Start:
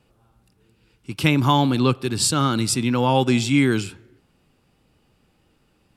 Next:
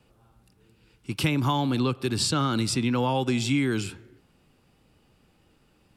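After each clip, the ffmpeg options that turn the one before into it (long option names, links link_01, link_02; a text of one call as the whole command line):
ffmpeg -i in.wav -filter_complex "[0:a]acrossover=split=390|790|5800[link_01][link_02][link_03][link_04];[link_04]alimiter=limit=-23.5dB:level=0:latency=1:release=310[link_05];[link_01][link_02][link_03][link_05]amix=inputs=4:normalize=0,acompressor=threshold=-21dB:ratio=6" out.wav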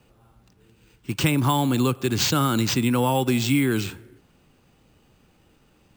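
ffmpeg -i in.wav -af "acrusher=samples=4:mix=1:aa=0.000001,volume=3.5dB" out.wav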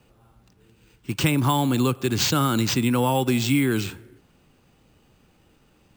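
ffmpeg -i in.wav -af anull out.wav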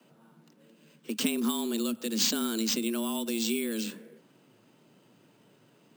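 ffmpeg -i in.wav -filter_complex "[0:a]acrossover=split=150|3000[link_01][link_02][link_03];[link_02]acompressor=threshold=-35dB:ratio=6[link_04];[link_01][link_04][link_03]amix=inputs=3:normalize=0,afreqshift=110,volume=-2.5dB" out.wav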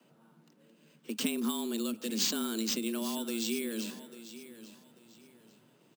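ffmpeg -i in.wav -af "aecho=1:1:843|1686|2529:0.188|0.0527|0.0148,volume=-3.5dB" out.wav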